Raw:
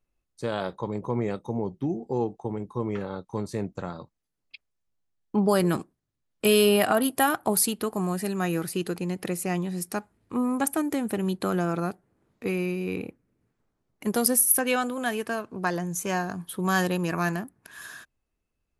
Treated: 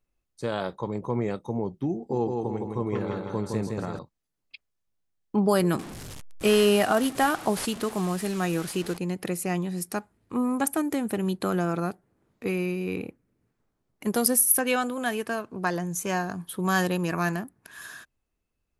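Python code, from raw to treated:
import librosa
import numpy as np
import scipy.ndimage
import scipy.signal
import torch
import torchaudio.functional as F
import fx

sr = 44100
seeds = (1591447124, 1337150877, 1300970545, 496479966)

y = fx.echo_feedback(x, sr, ms=163, feedback_pct=46, wet_db=-3.5, at=(1.94, 3.99))
y = fx.delta_mod(y, sr, bps=64000, step_db=-33.5, at=(5.79, 8.97))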